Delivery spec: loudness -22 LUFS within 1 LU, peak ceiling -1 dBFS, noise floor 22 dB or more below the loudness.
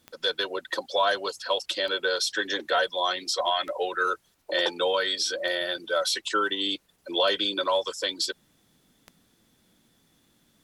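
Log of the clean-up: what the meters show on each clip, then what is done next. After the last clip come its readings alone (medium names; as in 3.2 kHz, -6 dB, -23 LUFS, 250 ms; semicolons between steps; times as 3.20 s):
clicks found 6; loudness -26.5 LUFS; peak level -12.0 dBFS; loudness target -22.0 LUFS
-> de-click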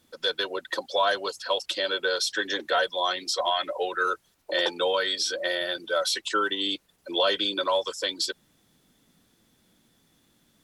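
clicks found 0; loudness -26.5 LUFS; peak level -12.0 dBFS; loudness target -22.0 LUFS
-> trim +4.5 dB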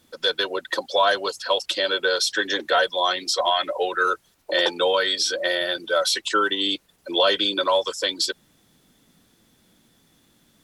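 loudness -22.0 LUFS; peak level -7.5 dBFS; noise floor -62 dBFS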